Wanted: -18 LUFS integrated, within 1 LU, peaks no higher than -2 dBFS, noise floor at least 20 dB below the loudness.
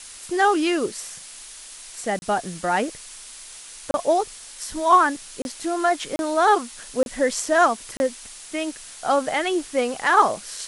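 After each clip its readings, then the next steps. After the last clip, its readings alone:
dropouts 6; longest dropout 31 ms; noise floor -41 dBFS; noise floor target -43 dBFS; loudness -22.5 LUFS; peak -5.5 dBFS; loudness target -18.0 LUFS
-> interpolate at 2.19/3.91/5.42/6.16/7.03/7.97, 31 ms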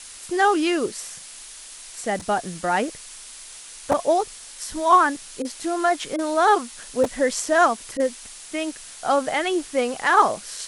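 dropouts 0; noise floor -41 dBFS; noise floor target -43 dBFS
-> denoiser 6 dB, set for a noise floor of -41 dBFS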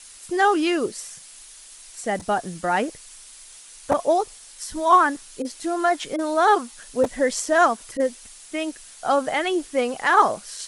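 noise floor -45 dBFS; loudness -22.5 LUFS; peak -5.5 dBFS; loudness target -18.0 LUFS
-> gain +4.5 dB; limiter -2 dBFS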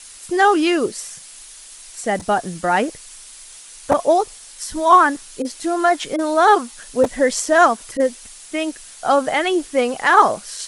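loudness -18.0 LUFS; peak -2.0 dBFS; noise floor -41 dBFS

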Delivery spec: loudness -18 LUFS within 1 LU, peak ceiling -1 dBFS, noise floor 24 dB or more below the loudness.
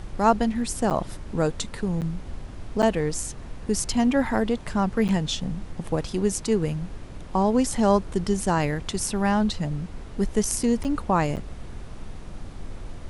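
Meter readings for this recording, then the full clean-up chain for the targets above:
dropouts 6; longest dropout 8.5 ms; noise floor -39 dBFS; noise floor target -49 dBFS; loudness -25.0 LUFS; peak -6.0 dBFS; loudness target -18.0 LUFS
-> interpolate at 0.9/2.01/2.82/5.08/10.84/11.36, 8.5 ms; noise print and reduce 10 dB; gain +7 dB; limiter -1 dBFS

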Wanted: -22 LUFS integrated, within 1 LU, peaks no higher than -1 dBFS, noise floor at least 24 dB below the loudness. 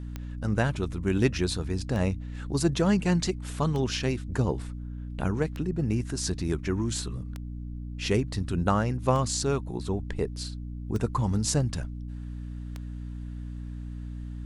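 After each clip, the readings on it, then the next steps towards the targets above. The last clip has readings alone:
clicks 8; hum 60 Hz; harmonics up to 300 Hz; hum level -35 dBFS; loudness -29.5 LUFS; peak -8.0 dBFS; loudness target -22.0 LUFS
-> de-click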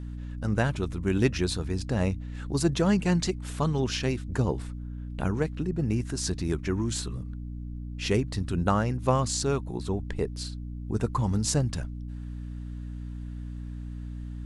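clicks 0; hum 60 Hz; harmonics up to 300 Hz; hum level -35 dBFS
-> de-hum 60 Hz, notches 5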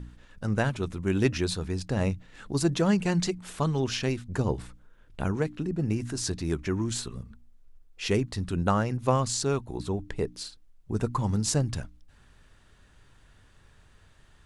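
hum none; loudness -29.0 LUFS; peak -10.0 dBFS; loudness target -22.0 LUFS
-> gain +7 dB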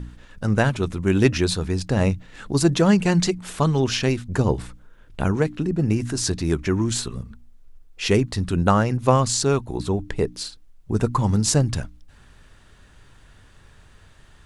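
loudness -22.0 LUFS; peak -3.0 dBFS; noise floor -51 dBFS

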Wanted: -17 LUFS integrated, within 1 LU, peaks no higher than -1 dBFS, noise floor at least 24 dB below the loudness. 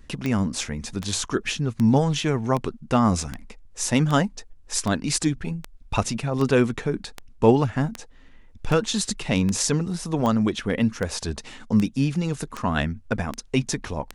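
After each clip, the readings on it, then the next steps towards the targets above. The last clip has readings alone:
clicks 19; loudness -24.0 LUFS; peak -3.5 dBFS; loudness target -17.0 LUFS
-> de-click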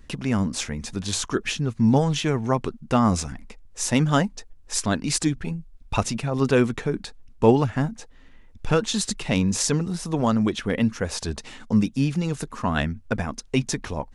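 clicks 0; loudness -24.0 LUFS; peak -3.5 dBFS; loudness target -17.0 LUFS
-> gain +7 dB; limiter -1 dBFS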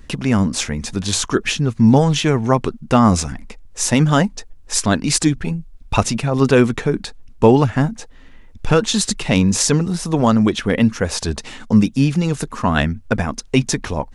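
loudness -17.5 LUFS; peak -1.0 dBFS; noise floor -42 dBFS

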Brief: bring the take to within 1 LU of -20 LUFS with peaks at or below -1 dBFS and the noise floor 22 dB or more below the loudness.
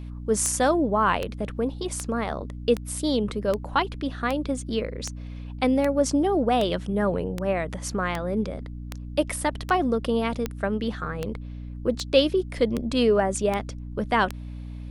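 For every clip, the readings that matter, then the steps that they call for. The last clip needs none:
clicks 19; hum 60 Hz; harmonics up to 300 Hz; hum level -33 dBFS; loudness -25.5 LUFS; peak -5.0 dBFS; loudness target -20.0 LUFS
-> de-click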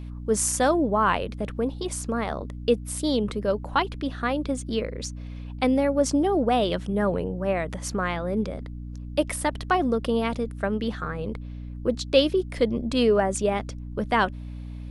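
clicks 0; hum 60 Hz; harmonics up to 300 Hz; hum level -33 dBFS
-> notches 60/120/180/240/300 Hz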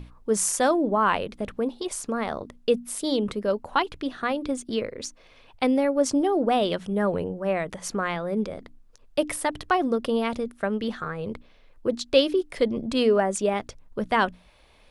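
hum none; loudness -26.0 LUFS; peak -5.5 dBFS; loudness target -20.0 LUFS
-> gain +6 dB; limiter -1 dBFS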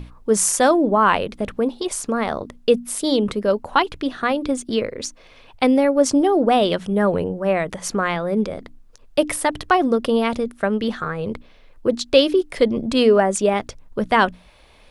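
loudness -20.0 LUFS; peak -1.0 dBFS; noise floor -49 dBFS

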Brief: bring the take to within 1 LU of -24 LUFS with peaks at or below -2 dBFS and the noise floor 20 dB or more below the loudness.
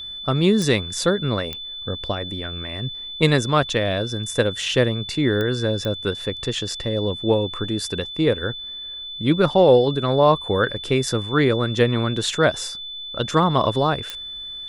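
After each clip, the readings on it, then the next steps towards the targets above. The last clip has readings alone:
clicks 5; steady tone 3500 Hz; tone level -31 dBFS; loudness -21.5 LUFS; peak -3.0 dBFS; loudness target -24.0 LUFS
-> de-click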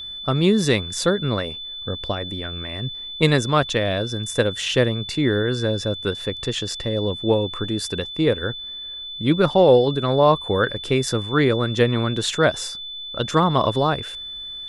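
clicks 0; steady tone 3500 Hz; tone level -31 dBFS
-> notch 3500 Hz, Q 30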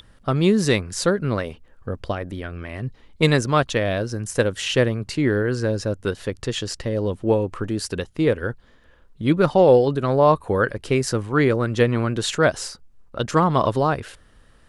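steady tone none; loudness -21.5 LUFS; peak -3.0 dBFS; loudness target -24.0 LUFS
-> gain -2.5 dB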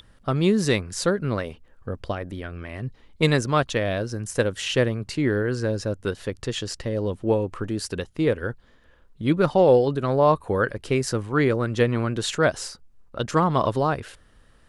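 loudness -24.0 LUFS; peak -5.5 dBFS; noise floor -56 dBFS

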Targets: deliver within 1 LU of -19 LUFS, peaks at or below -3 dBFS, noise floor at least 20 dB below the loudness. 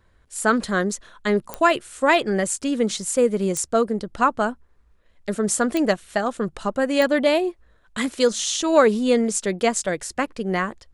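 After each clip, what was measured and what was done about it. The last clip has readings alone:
clicks 4; loudness -22.0 LUFS; peak -4.0 dBFS; loudness target -19.0 LUFS
-> de-click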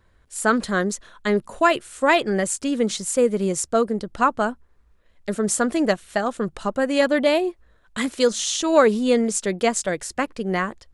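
clicks 0; loudness -22.0 LUFS; peak -4.0 dBFS; loudness target -19.0 LUFS
-> gain +3 dB; limiter -3 dBFS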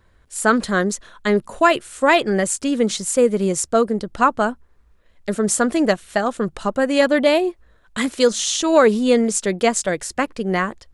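loudness -19.0 LUFS; peak -3.0 dBFS; noise floor -55 dBFS

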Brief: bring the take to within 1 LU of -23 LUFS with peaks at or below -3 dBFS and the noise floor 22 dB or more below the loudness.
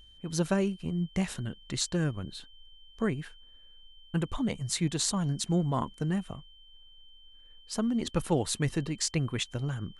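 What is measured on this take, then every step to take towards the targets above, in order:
steady tone 3100 Hz; tone level -55 dBFS; loudness -31.0 LUFS; peak -11.5 dBFS; loudness target -23.0 LUFS
-> notch 3100 Hz, Q 30; gain +8 dB

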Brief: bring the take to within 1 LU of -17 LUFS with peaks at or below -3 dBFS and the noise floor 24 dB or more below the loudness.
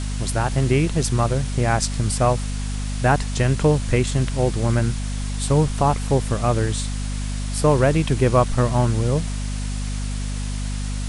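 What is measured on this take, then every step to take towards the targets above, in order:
hum 50 Hz; harmonics up to 250 Hz; hum level -23 dBFS; noise floor -26 dBFS; noise floor target -46 dBFS; loudness -21.5 LUFS; peak -4.5 dBFS; loudness target -17.0 LUFS
-> de-hum 50 Hz, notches 5; denoiser 20 dB, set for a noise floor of -26 dBFS; gain +4.5 dB; limiter -3 dBFS

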